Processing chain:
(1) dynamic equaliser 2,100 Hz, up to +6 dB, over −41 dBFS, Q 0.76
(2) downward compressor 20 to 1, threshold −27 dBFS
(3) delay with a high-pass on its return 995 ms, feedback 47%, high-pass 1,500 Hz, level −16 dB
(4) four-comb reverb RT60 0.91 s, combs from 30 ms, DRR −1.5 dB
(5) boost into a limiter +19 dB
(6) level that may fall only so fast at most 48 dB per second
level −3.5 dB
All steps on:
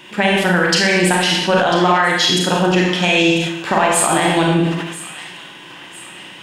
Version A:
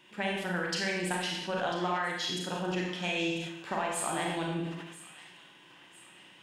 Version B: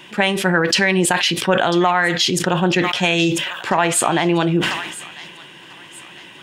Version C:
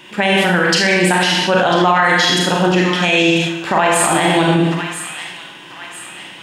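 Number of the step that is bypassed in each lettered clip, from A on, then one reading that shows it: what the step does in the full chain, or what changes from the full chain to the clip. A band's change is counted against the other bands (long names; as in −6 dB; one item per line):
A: 5, change in crest factor +3.0 dB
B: 4, change in momentary loudness spread −4 LU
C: 2, average gain reduction 3.5 dB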